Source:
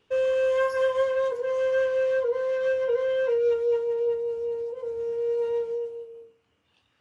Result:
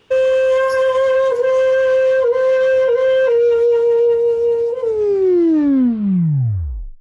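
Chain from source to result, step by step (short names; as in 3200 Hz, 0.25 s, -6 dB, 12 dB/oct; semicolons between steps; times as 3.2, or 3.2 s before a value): tape stop at the end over 2.20 s; maximiser +22 dB; gain -8 dB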